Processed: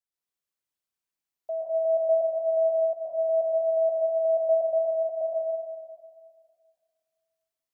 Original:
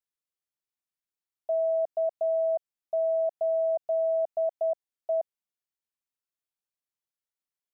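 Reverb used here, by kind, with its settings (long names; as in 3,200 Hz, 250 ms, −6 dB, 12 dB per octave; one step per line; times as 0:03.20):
dense smooth reverb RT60 2 s, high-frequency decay 1×, pre-delay 105 ms, DRR −6 dB
level −4 dB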